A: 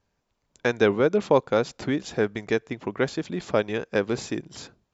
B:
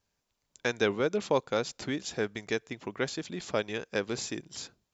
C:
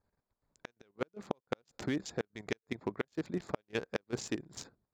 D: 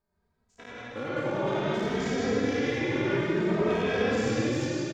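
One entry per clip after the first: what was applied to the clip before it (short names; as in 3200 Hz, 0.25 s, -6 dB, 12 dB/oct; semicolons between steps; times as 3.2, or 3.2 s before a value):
high shelf 2700 Hz +11.5 dB; gain -8 dB
Wiener smoothing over 15 samples; flipped gate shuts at -19 dBFS, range -41 dB; level quantiser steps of 12 dB; gain +4.5 dB
spectral dilation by 0.12 s; reverb RT60 3.5 s, pre-delay 81 ms, DRR -9.5 dB; endless flanger 2.8 ms +0.58 Hz; gain -3.5 dB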